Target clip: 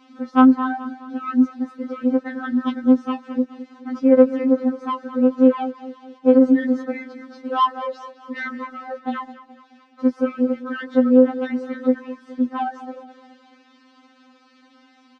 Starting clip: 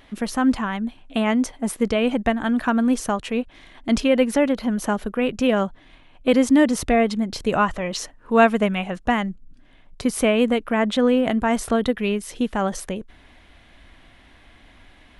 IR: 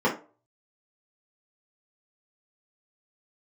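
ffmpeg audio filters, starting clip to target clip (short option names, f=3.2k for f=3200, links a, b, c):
-filter_complex "[0:a]highshelf=f=1.9k:t=q:w=3:g=-13.5,acrossover=split=390|2100[a][b][c];[a]alimiter=limit=-19dB:level=0:latency=1:release=182[d];[b]asoftclip=type=tanh:threshold=-11dB[e];[c]aeval=exprs='val(0)*sin(2*PI*47*n/s)':c=same[f];[d][e][f]amix=inputs=3:normalize=0,acrusher=bits=8:mix=0:aa=0.000001,highpass=f=140:w=0.5412,highpass=f=140:w=1.3066,equalizer=f=170:t=q:w=4:g=-7,equalizer=f=680:t=q:w=4:g=-9,equalizer=f=1.1k:t=q:w=4:g=-6,lowpass=f=5k:w=0.5412,lowpass=f=5k:w=1.3066,asplit=2[g][h];[h]aecho=0:1:211|422|633|844:0.178|0.0854|0.041|0.0197[i];[g][i]amix=inputs=2:normalize=0,afftfilt=real='re*3.46*eq(mod(b,12),0)':imag='im*3.46*eq(mod(b,12),0)':win_size=2048:overlap=0.75,volume=3dB"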